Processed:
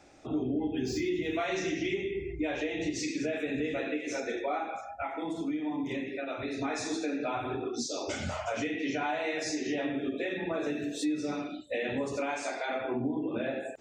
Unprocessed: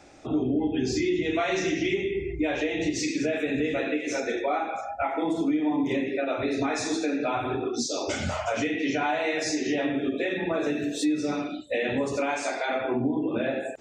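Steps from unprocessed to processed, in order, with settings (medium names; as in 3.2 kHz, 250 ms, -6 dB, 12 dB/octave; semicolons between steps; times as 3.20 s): 0.77–1.46 s: median filter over 3 samples; 4.78–6.63 s: peaking EQ 490 Hz -4 dB 1.9 oct; trim -5.5 dB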